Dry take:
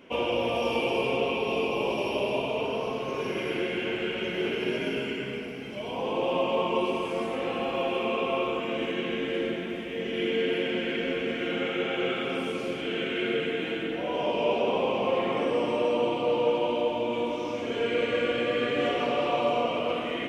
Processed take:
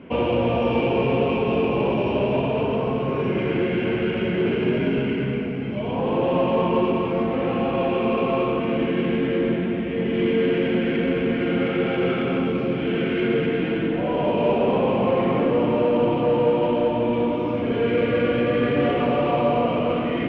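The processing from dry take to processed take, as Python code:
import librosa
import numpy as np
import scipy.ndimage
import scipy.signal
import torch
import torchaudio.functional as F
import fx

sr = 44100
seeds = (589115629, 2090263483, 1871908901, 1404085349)

p1 = scipy.signal.sosfilt(scipy.signal.butter(2, 69.0, 'highpass', fs=sr, output='sos'), x)
p2 = fx.bass_treble(p1, sr, bass_db=11, treble_db=-8)
p3 = np.clip(p2, -10.0 ** (-29.5 / 20.0), 10.0 ** (-29.5 / 20.0))
p4 = p2 + F.gain(torch.from_numpy(p3), -5.0).numpy()
p5 = fx.air_absorb(p4, sr, metres=290.0)
y = F.gain(torch.from_numpy(p5), 3.5).numpy()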